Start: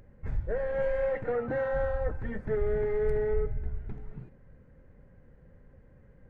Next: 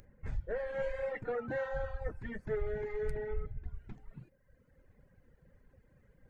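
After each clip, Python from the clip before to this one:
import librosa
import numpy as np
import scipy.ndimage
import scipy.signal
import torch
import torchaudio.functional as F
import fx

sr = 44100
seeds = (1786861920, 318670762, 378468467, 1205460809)

y = fx.dereverb_blind(x, sr, rt60_s=1.4)
y = fx.high_shelf(y, sr, hz=2500.0, db=11.5)
y = F.gain(torch.from_numpy(y), -5.0).numpy()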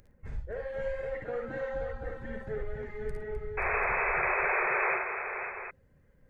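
y = fx.spec_paint(x, sr, seeds[0], shape='noise', start_s=3.57, length_s=1.4, low_hz=360.0, high_hz=2600.0, level_db=-29.0)
y = fx.echo_multitap(y, sr, ms=(56, 69, 110, 256, 529, 741), db=(-5.0, -9.5, -18.5, -10.5, -7.0, -9.5))
y = F.gain(torch.from_numpy(y), -2.0).numpy()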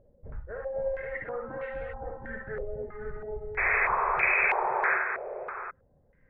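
y = fx.filter_held_lowpass(x, sr, hz=3.1, low_hz=580.0, high_hz=2500.0)
y = F.gain(torch.from_numpy(y), -2.5).numpy()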